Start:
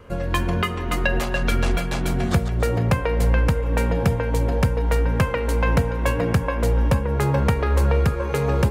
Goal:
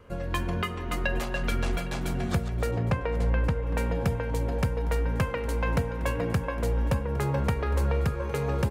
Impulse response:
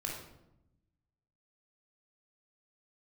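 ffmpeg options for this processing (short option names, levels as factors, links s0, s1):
-filter_complex "[0:a]asettb=1/sr,asplit=3[s0][s1][s2];[s0]atrim=end=2.714[s3];[s1]atrim=start=2.71:end=3.67,asetpts=PTS-STARTPTS,afade=t=in:d=0.004:c=qsin,afade=t=out:st=0.956:d=0.004:c=qsin,aemphasis=mode=reproduction:type=50fm[s4];[s2]atrim=start=3.666[s5];[s3][s4]acrossfade=d=0.004:c1=hsin:c2=qsin[s6];[s6][s5]acrossfade=d=0.004:c1=qsin:c2=hsin,aecho=1:1:810:0.106,volume=0.447"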